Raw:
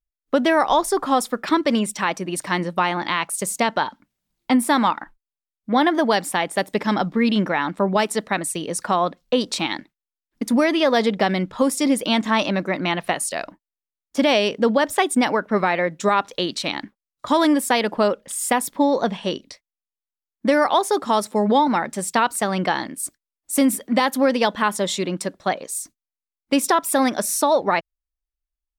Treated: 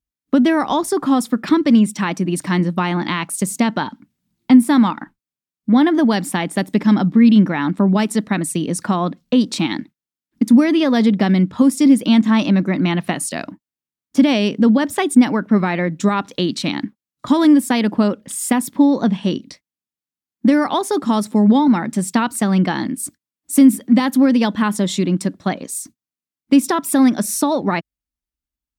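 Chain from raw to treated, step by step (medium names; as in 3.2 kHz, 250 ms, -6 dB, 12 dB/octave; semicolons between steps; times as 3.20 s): high-pass 87 Hz; resonant low shelf 360 Hz +9.5 dB, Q 1.5; in parallel at -1 dB: compression, threshold -19 dBFS, peak gain reduction 16 dB; on the sum: trim -4 dB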